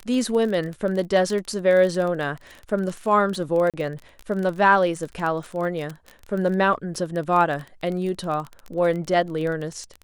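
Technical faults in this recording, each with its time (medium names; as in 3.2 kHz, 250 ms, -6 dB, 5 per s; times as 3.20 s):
crackle 24 per s -27 dBFS
3.70–3.74 s: dropout 37 ms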